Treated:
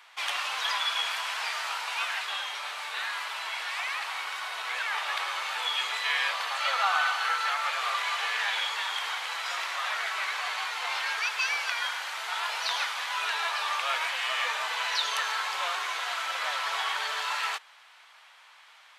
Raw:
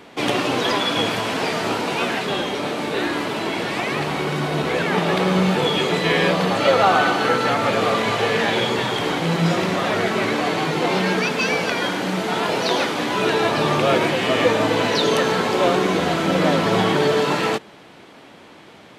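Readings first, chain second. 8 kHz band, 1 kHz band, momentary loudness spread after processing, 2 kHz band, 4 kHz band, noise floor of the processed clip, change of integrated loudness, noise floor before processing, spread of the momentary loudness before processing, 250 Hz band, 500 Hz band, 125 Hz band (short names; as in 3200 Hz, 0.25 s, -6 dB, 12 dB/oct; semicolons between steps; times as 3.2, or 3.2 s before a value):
-5.5 dB, -9.0 dB, 5 LU, -5.5 dB, -5.5 dB, -55 dBFS, -9.5 dB, -45 dBFS, 5 LU, under -40 dB, -25.5 dB, under -40 dB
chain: HPF 980 Hz 24 dB/oct; gain -5.5 dB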